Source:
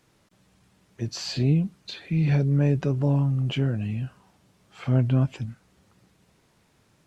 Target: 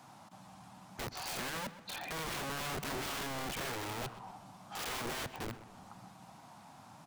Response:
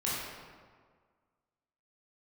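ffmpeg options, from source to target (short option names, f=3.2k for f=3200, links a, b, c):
-filter_complex "[0:a]highpass=140,acrossover=split=3400[a][b];[b]acompressor=threshold=-58dB:ratio=4:attack=1:release=60[c];[a][c]amix=inputs=2:normalize=0,firequalizer=gain_entry='entry(260,0);entry(420,-15);entry(740,11);entry(1800,-5);entry(4700,-3)':delay=0.05:min_phase=1,acompressor=threshold=-48dB:ratio=2,aeval=exprs='(mod(133*val(0)+1,2)-1)/133':c=same,asplit=2[d][e];[e]adelay=126,lowpass=f=4.2k:p=1,volume=-14dB,asplit=2[f][g];[g]adelay=126,lowpass=f=4.2k:p=1,volume=0.5,asplit=2[h][i];[i]adelay=126,lowpass=f=4.2k:p=1,volume=0.5,asplit=2[j][k];[k]adelay=126,lowpass=f=4.2k:p=1,volume=0.5,asplit=2[l][m];[m]adelay=126,lowpass=f=4.2k:p=1,volume=0.5[n];[f][h][j][l][n]amix=inputs=5:normalize=0[o];[d][o]amix=inputs=2:normalize=0,volume=8dB"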